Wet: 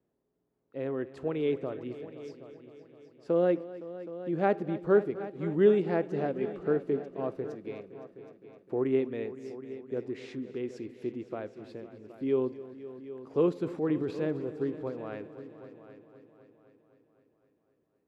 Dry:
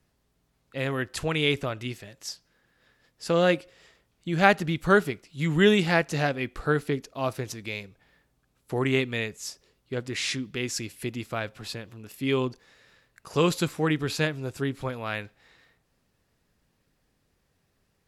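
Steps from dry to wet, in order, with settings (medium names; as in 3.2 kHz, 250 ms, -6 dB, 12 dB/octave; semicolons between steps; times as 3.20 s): 13.55–14.42 s: transient shaper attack -3 dB, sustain +8 dB; band-pass filter 380 Hz, Q 1.5; multi-head delay 257 ms, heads all three, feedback 45%, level -17.5 dB; on a send at -22.5 dB: reverberation RT60 0.85 s, pre-delay 45 ms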